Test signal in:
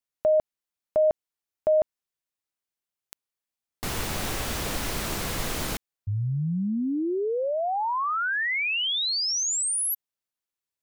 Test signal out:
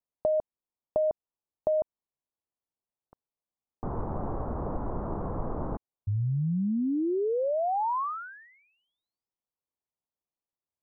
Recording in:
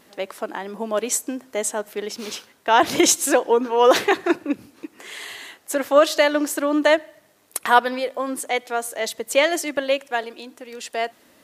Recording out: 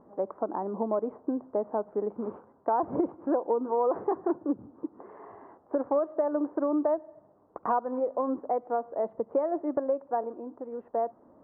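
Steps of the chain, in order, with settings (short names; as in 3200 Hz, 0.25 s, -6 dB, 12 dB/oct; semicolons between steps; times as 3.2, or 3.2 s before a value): steep low-pass 1100 Hz 36 dB/oct; compressor 6:1, threshold -24 dBFS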